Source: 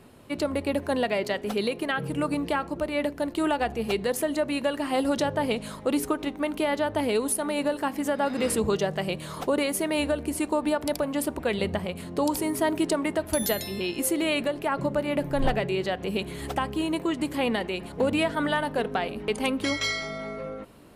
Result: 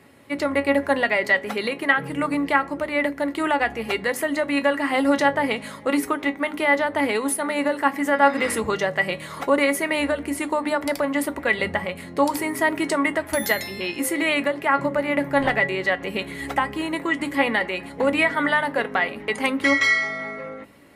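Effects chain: dynamic EQ 1200 Hz, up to +7 dB, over -41 dBFS, Q 0.91; HPF 66 Hz; bell 2000 Hz +12.5 dB 0.33 oct; notches 50/100/150/200/250/300 Hz; resonator 280 Hz, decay 0.15 s, harmonics all, mix 70%; gain +7.5 dB

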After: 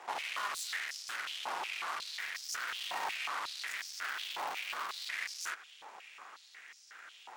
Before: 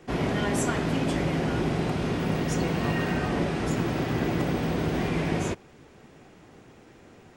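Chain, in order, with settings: tube stage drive 42 dB, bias 0.7; stepped high-pass 5.5 Hz 880–5300 Hz; gain +5 dB

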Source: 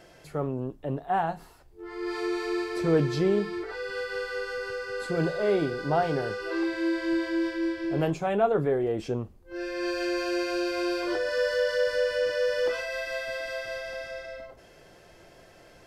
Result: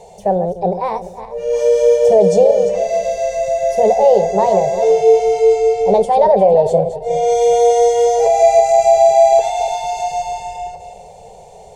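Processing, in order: regenerating reverse delay 0.242 s, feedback 51%, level -10 dB; EQ curve 140 Hz 0 dB, 210 Hz -25 dB, 300 Hz +5 dB, 570 Hz +6 dB, 930 Hz -21 dB, 1400 Hz -15 dB, 6100 Hz 0 dB, 11000 Hz -17 dB; speed mistake 33 rpm record played at 45 rpm; maximiser +12.5 dB; gain -1 dB

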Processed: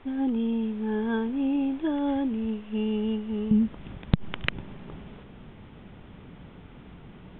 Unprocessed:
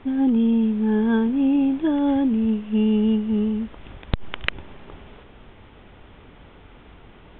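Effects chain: bell 170 Hz -6.5 dB 1.3 oct, from 3.51 s +11.5 dB; gain -4 dB

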